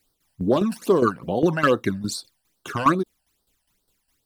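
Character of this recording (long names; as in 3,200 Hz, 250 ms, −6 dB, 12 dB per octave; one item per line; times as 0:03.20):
a quantiser's noise floor 12 bits, dither triangular
phaser sweep stages 12, 2.4 Hz, lowest notch 360–2,500 Hz
tremolo saw down 4.9 Hz, depth 70%
Ogg Vorbis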